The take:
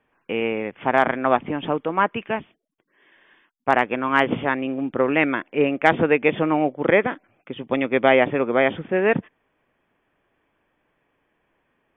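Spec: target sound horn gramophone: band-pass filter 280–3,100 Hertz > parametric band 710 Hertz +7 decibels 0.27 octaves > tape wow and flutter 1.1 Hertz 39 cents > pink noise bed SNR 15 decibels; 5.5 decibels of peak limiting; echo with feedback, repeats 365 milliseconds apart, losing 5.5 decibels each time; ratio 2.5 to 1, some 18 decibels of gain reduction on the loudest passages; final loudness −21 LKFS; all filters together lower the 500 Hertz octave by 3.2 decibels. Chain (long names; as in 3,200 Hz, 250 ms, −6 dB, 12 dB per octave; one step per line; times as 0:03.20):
parametric band 500 Hz −6 dB
downward compressor 2.5 to 1, threshold −42 dBFS
brickwall limiter −25.5 dBFS
band-pass filter 280–3,100 Hz
parametric band 710 Hz +7 dB 0.27 octaves
repeating echo 365 ms, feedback 53%, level −5.5 dB
tape wow and flutter 1.1 Hz 39 cents
pink noise bed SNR 15 dB
level +19 dB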